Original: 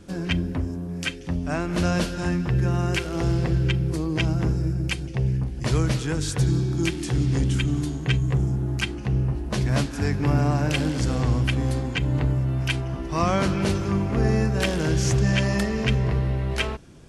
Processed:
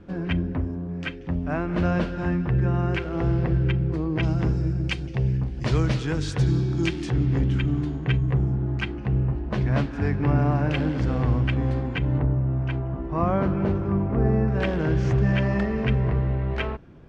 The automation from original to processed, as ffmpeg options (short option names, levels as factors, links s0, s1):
-af "asetnsamples=n=441:p=0,asendcmd='4.23 lowpass f 4400;7.1 lowpass f 2300;12.18 lowpass f 1200;14.48 lowpass f 2000',lowpass=2100"